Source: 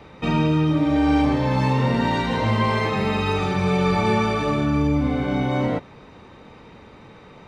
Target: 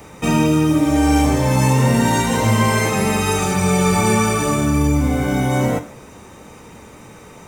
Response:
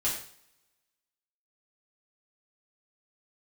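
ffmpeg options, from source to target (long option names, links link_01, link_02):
-filter_complex "[0:a]aexciter=amount=9.5:drive=7.5:freq=6200,asplit=2[link_01][link_02];[1:a]atrim=start_sample=2205,adelay=10[link_03];[link_02][link_03]afir=irnorm=-1:irlink=0,volume=-17.5dB[link_04];[link_01][link_04]amix=inputs=2:normalize=0,volume=4dB"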